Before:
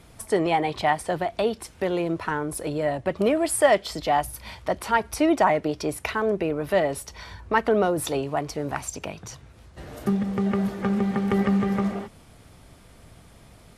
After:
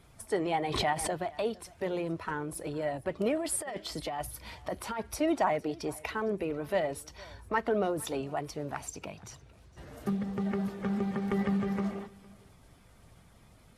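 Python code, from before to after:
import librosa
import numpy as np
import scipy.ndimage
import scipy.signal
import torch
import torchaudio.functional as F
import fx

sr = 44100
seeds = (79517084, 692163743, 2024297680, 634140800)

p1 = fx.spec_quant(x, sr, step_db=15)
p2 = fx.over_compress(p1, sr, threshold_db=-25.0, ratio=-1.0, at=(3.39, 5.16), fade=0.02)
p3 = p2 + fx.echo_single(p2, sr, ms=459, db=-23.0, dry=0)
p4 = fx.pre_swell(p3, sr, db_per_s=39.0, at=(0.6, 1.15))
y = p4 * 10.0 ** (-7.5 / 20.0)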